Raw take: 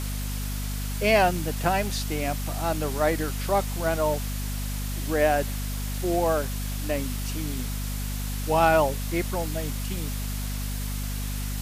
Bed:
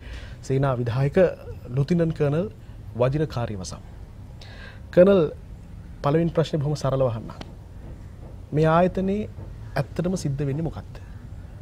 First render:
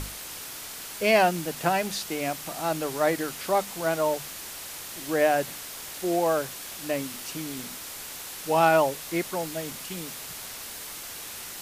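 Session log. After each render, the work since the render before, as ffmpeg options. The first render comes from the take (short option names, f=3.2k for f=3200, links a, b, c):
-af "bandreject=f=50:t=h:w=6,bandreject=f=100:t=h:w=6,bandreject=f=150:t=h:w=6,bandreject=f=200:t=h:w=6,bandreject=f=250:t=h:w=6"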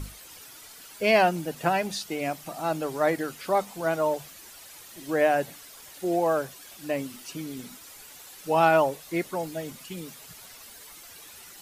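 -af "afftdn=nr=11:nf=-39"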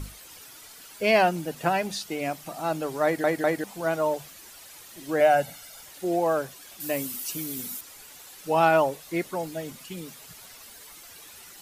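-filter_complex "[0:a]asettb=1/sr,asplit=3[a][b][c];[a]atrim=end=5.204[d];[b]atrim=start=5.2:end=5.84,asetpts=PTS-STARTPTS,afade=t=in:d=0.004:c=qsin,afade=t=out:st=0.636:d=0.004:c=qsin,aecho=1:1:1.4:0.65,atrim=end_sample=28224[e];[c]atrim=start=5.836[f];[d][e]acrossfade=d=0.004:c1=hsin:c2=qsin[g];[g][f]acrossfade=d=0.004:c1=qsin:c2=hsin,asettb=1/sr,asplit=3[h][i][j];[h]atrim=end=6.804[k];[i]atrim=start=6.8:end=7.81,asetpts=PTS-STARTPTS,afade=t=in:d=0.004:c=qsin,afade=t=out:st=1.006:d=0.004:c=qsin,aemphasis=mode=production:type=50fm[l];[j]atrim=start=7.806[m];[k][l]acrossfade=d=0.004:c1=hsin:c2=qsin[n];[n][m]acrossfade=d=0.004:c1=qsin:c2=hsin,asplit=4[o][p][q][r];[o]atrim=end=3.242[s];[p]atrim=start=3.038:end=3.242[t];[q]atrim=start=3.038:end=3.242[u];[r]atrim=start=3.638[v];[s][t]acrossfade=d=0.004:c1=hsin:c2=hsin[w];[w][u]acrossfade=d=0.004:c1=hsin:c2=hsin[x];[x][v]acrossfade=d=0.004:c1=hsin:c2=hsin"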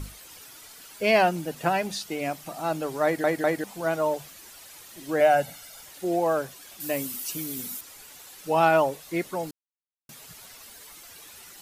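-filter_complex "[0:a]asplit=3[a][b][c];[a]atrim=end=9.51,asetpts=PTS-STARTPTS,afade=t=out:st=9.506:d=0.004:c=hsin[d];[b]atrim=start=9.51:end=10.09,asetpts=PTS-STARTPTS,volume=0[e];[c]atrim=start=10.09,asetpts=PTS-STARTPTS,afade=t=in:d=0.004:c=hsin[f];[d][e][f]concat=n=3:v=0:a=1"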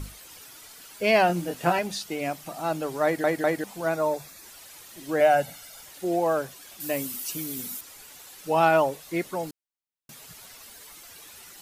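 -filter_complex "[0:a]asettb=1/sr,asplit=3[a][b][c];[a]atrim=end=1.274[d];[b]atrim=start=1.27:end=1.79,asetpts=PTS-STARTPTS,afade=t=in:d=0.004:c=qsin,afade=t=out:st=0.516:d=0.004:c=qsin,asplit=2[e][f];[f]adelay=23,volume=-4dB[g];[e][g]amix=inputs=2:normalize=0,atrim=end_sample=22932[h];[c]atrim=start=1.786[i];[d][h]acrossfade=d=0.004:c1=hsin:c2=qsin[j];[j][i]acrossfade=d=0.004:c1=qsin:c2=hsin,asettb=1/sr,asplit=3[k][l][m];[k]atrim=end=3.894[n];[l]atrim=start=3.89:end=4.44,asetpts=PTS-STARTPTS,afade=t=in:d=0.004:c=qsin,afade=t=out:st=0.546:d=0.004:c=qsin,asuperstop=centerf=3000:order=4:qfactor=5.9[o];[m]atrim=start=4.436[p];[n][o]acrossfade=d=0.004:c1=hsin:c2=qsin[q];[q][p]acrossfade=d=0.004:c1=qsin:c2=hsin"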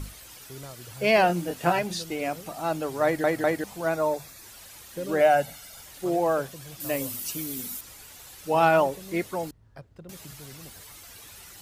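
-filter_complex "[1:a]volume=-20.5dB[a];[0:a][a]amix=inputs=2:normalize=0"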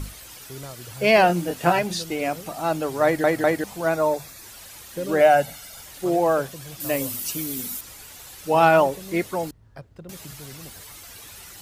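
-af "volume=4dB"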